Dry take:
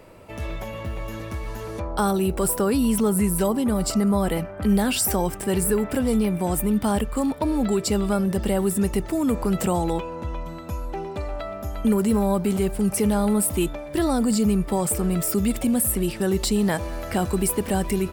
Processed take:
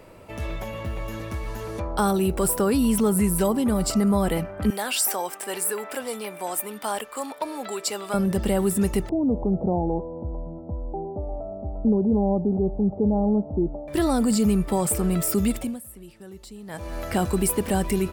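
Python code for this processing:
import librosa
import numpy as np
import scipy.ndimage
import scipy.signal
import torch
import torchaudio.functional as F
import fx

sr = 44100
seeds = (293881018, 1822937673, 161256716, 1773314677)

y = fx.highpass(x, sr, hz=620.0, slope=12, at=(4.7, 8.14))
y = fx.ellip_lowpass(y, sr, hz=800.0, order=4, stop_db=80, at=(9.09, 13.88))
y = fx.edit(y, sr, fx.fade_down_up(start_s=15.47, length_s=1.53, db=-20.0, fade_s=0.33), tone=tone)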